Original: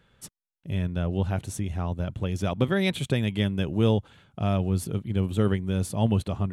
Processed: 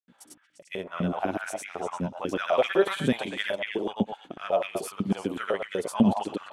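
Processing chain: hum 60 Hz, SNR 30 dB; granulator, pitch spread up and down by 0 st; repeats whose band climbs or falls 116 ms, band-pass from 860 Hz, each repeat 1.4 oct, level -1 dB; step-sequenced high-pass 8 Hz 220–2100 Hz

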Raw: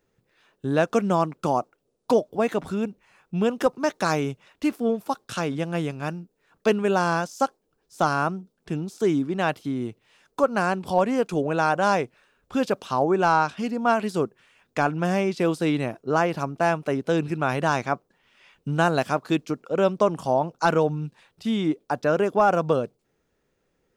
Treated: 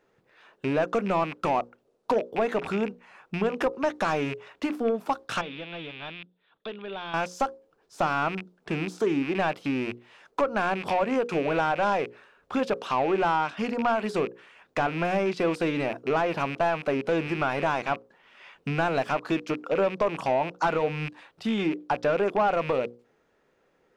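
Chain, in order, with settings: rattle on loud lows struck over -38 dBFS, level -26 dBFS; compression 3:1, threshold -26 dBFS, peak gain reduction 9 dB; overdrive pedal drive 17 dB, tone 1.3 kHz, clips at -12.5 dBFS; 5.41–7.14 s: four-pole ladder low-pass 3.7 kHz, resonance 80%; hum notches 60/120/180/240/300/360/420/480/540 Hz

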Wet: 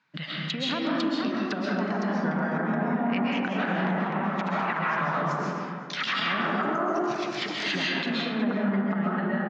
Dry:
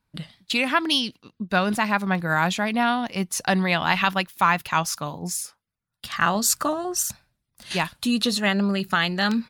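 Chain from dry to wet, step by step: recorder AGC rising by 6.7 dB/s; low-pass that closes with the level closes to 440 Hz, closed at -18.5 dBFS; compression, threshold -31 dBFS, peak gain reduction 12 dB; ever faster or slower copies 555 ms, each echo +2 st, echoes 3, each echo -6 dB; Chebyshev band-pass 140–6700 Hz, order 4; peaking EQ 1.8 kHz +13 dB 2.1 oct; on a send: delay 368 ms -20.5 dB; on the sum: algorithmic reverb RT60 2.1 s, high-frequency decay 0.4×, pre-delay 95 ms, DRR -3.5 dB; peak limiter -17.5 dBFS, peak gain reduction 11.5 dB

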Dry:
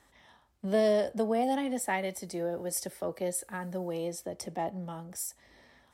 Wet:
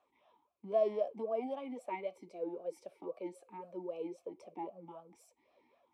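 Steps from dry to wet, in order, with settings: talking filter a-u 3.8 Hz; trim +2 dB

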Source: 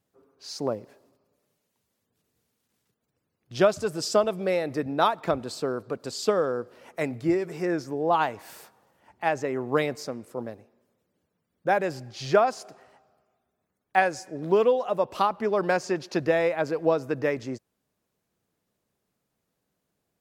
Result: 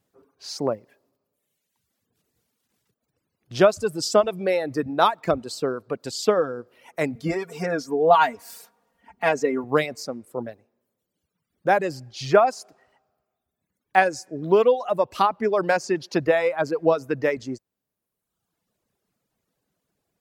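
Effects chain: reverb removal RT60 1.2 s; 7.15–9.64 s: comb 4.3 ms, depth 97%; trim +4 dB

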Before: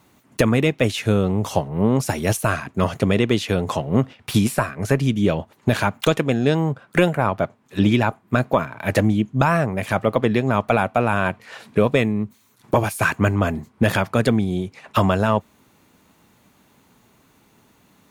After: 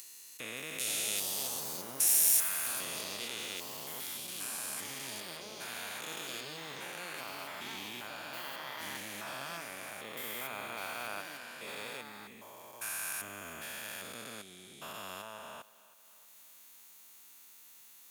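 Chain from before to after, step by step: spectrogram pixelated in time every 400 ms; 0.78–3.01 s: treble shelf 5 kHz +11.5 dB; thinning echo 318 ms, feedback 37%, high-pass 210 Hz, level -17.5 dB; upward compressor, threshold -41 dBFS; ever faster or slower copies 571 ms, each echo +5 st, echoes 2, each echo -6 dB; differentiator

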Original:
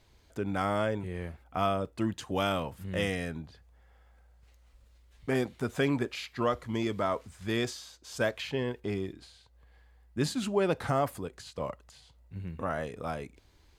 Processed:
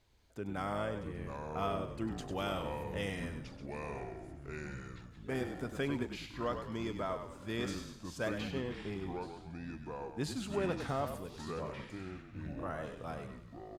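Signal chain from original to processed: frequency-shifting echo 99 ms, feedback 42%, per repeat -40 Hz, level -8 dB; ever faster or slower copies 534 ms, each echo -5 st, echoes 3, each echo -6 dB; trim -8 dB

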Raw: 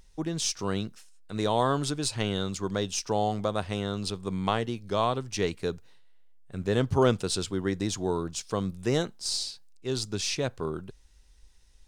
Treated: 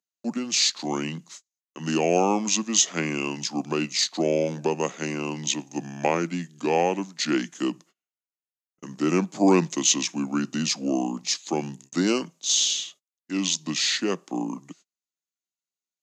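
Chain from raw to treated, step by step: speed mistake 45 rpm record played at 33 rpm; steep high-pass 160 Hz 72 dB/octave; treble shelf 9 kHz -6 dB; gate -53 dBFS, range -36 dB; peaking EQ 6.8 kHz +15 dB 0.59 oct; trim +4 dB

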